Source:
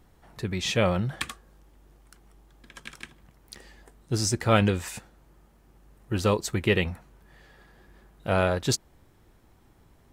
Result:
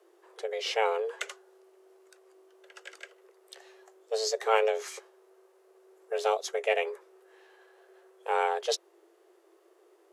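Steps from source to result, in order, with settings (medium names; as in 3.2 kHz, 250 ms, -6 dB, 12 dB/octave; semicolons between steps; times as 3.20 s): formant shift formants -4 st; frequency shift +330 Hz; trim -4 dB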